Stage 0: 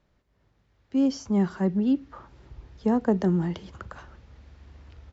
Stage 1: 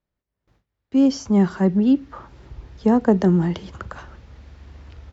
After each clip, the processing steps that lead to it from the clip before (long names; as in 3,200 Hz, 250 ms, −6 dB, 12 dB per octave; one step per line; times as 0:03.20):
noise gate with hold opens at −55 dBFS
level +6.5 dB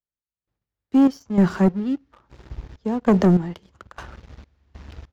gate pattern "....xxx..xx" 98 BPM −12 dB
leveller curve on the samples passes 2
level −3.5 dB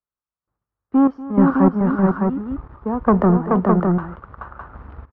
low-pass with resonance 1,200 Hz, resonance Q 2.9
on a send: multi-tap delay 239/429/610 ms −17.5/−3/−4 dB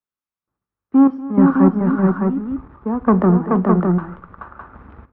convolution reverb RT60 0.55 s, pre-delay 3 ms, DRR 13.5 dB
level −3.5 dB